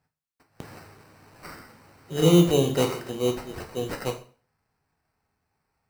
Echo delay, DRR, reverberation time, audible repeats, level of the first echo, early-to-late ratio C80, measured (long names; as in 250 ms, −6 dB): no echo audible, 4.0 dB, 0.40 s, no echo audible, no echo audible, 16.0 dB